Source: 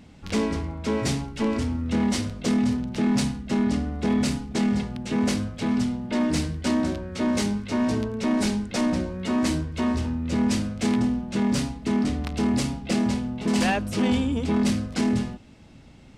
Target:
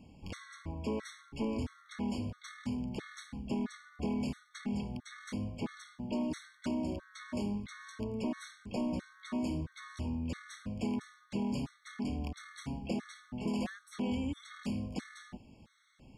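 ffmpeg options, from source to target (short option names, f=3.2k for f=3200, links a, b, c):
-filter_complex "[0:a]acrossover=split=900|3500[a][b][c];[a]acompressor=threshold=-25dB:ratio=4[d];[b]acompressor=threshold=-40dB:ratio=4[e];[c]acompressor=threshold=-46dB:ratio=4[f];[d][e][f]amix=inputs=3:normalize=0,afftfilt=real='re*gt(sin(2*PI*1.5*pts/sr)*(1-2*mod(floor(b*sr/1024/1100),2)),0)':imag='im*gt(sin(2*PI*1.5*pts/sr)*(1-2*mod(floor(b*sr/1024/1100),2)),0)':win_size=1024:overlap=0.75,volume=-6.5dB"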